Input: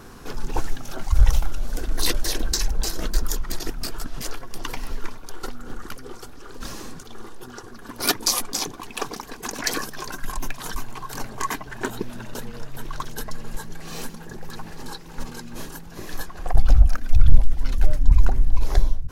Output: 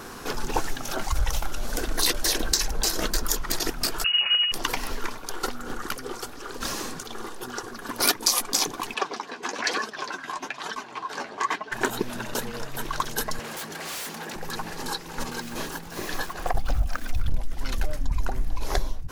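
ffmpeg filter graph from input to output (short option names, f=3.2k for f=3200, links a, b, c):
-filter_complex "[0:a]asettb=1/sr,asplit=3[a][b][c];[a]atrim=end=4.044[d];[b]atrim=start=4.04:end=4.52,asetpts=PTS-STARTPTS,afade=t=in:d=0.004:c=qsin,afade=t=out:st=0.476:d=0.004:c=qsin,equalizer=f=210:t=o:w=2.5:g=4.5,lowpass=f=2.5k:t=q:w=0.5098,lowpass=f=2.5k:t=q:w=0.6013,lowpass=f=2.5k:t=q:w=0.9,lowpass=f=2.5k:t=q:w=2.563,afreqshift=-2900[e];[c]atrim=start=4.516[f];[d][e]acrossfade=d=0.004:c1=hsin:c2=qsin[g];[g][f]acrossfade=d=0.004:c1=qsin:c2=hsin,asettb=1/sr,asplit=3[h][i][j];[h]atrim=end=8.944[k];[i]atrim=start=8.94:end=11.72,asetpts=PTS-STARTPTS,afade=t=in:d=0.004:c=qsin,afade=t=out:st=2.776:d=0.004:c=qsin,flanger=delay=4.5:depth=7.8:regen=31:speed=1.1:shape=sinusoidal,aeval=exprs='val(0)+0.00251*(sin(2*PI*60*n/s)+sin(2*PI*2*60*n/s)/2+sin(2*PI*3*60*n/s)/3+sin(2*PI*4*60*n/s)/4+sin(2*PI*5*60*n/s)/5)':c=same,highpass=240,lowpass=4.4k[l];[j]atrim=start=11.716[m];[k][l]acrossfade=d=0.004:c1=hsin:c2=qsin[n];[n][m]acrossfade=d=0.004:c1=qsin:c2=hsin,asettb=1/sr,asplit=3[o][p][q];[o]atrim=end=13.394[r];[p]atrim=start=13.39:end=14.36,asetpts=PTS-STARTPTS,afade=t=in:d=0.004:c=qsin,afade=t=out:st=0.966:d=0.004:c=qsin,highpass=160,equalizer=f=1.1k:w=0.31:g=4.5,aeval=exprs='0.0168*(abs(mod(val(0)/0.0168+3,4)-2)-1)':c=same[s];[q]atrim=start=14.356[t];[r][s]acrossfade=d=0.004:c1=hsin:c2=qsin[u];[u][t]acrossfade=d=0.004:c1=qsin:c2=hsin,asettb=1/sr,asplit=3[v][w][x];[v]atrim=end=15.324[y];[w]atrim=start=15.32:end=17.3,asetpts=PTS-STARTPTS,afade=t=in:d=0.004:c=qsin,afade=t=out:st=1.976:d=0.004:c=qsin,acrossover=split=5200[z][aa];[aa]acompressor=threshold=-47dB:ratio=4:attack=1:release=60[ab];[z][ab]amix=inputs=2:normalize=0,acrusher=bits=9:dc=4:mix=0:aa=0.000001[ac];[x]atrim=start=17.296[ad];[y][ac]acrossfade=d=0.004:c1=hsin:c2=qsin[ae];[ae][ad]acrossfade=d=0.004:c1=qsin:c2=hsin,lowshelf=f=210:g=-11.5,acompressor=threshold=-27dB:ratio=3,volume=7dB"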